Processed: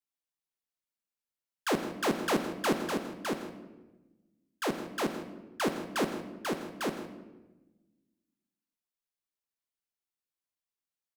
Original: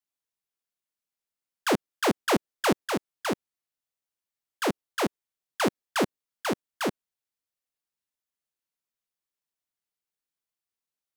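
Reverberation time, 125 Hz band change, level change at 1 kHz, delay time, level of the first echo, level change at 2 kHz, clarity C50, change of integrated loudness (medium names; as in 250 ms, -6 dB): 1.1 s, -3.5 dB, -4.5 dB, 124 ms, -17.0 dB, -4.5 dB, 8.0 dB, -4.0 dB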